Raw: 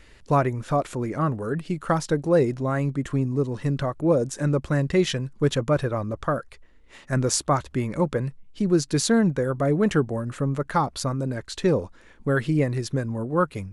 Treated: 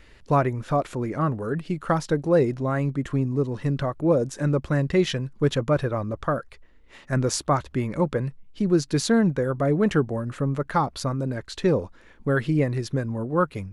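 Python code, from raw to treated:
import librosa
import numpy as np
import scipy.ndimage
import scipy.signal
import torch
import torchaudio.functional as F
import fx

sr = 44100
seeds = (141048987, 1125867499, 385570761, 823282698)

y = fx.peak_eq(x, sr, hz=8500.0, db=-5.5, octaves=1.1)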